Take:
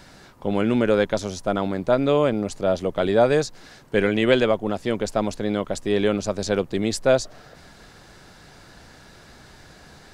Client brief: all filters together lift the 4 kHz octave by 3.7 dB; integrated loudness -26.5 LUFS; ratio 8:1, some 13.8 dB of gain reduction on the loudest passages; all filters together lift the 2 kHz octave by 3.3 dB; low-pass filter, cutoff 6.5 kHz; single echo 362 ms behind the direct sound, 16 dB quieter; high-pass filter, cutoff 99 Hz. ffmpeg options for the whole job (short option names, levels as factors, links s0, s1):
-af "highpass=99,lowpass=6500,equalizer=f=2000:t=o:g=3.5,equalizer=f=4000:t=o:g=4,acompressor=threshold=0.0501:ratio=8,aecho=1:1:362:0.158,volume=1.78"